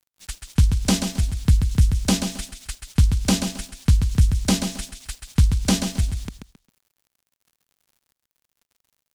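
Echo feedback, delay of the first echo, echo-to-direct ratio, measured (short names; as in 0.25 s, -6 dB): 25%, 0.134 s, -6.5 dB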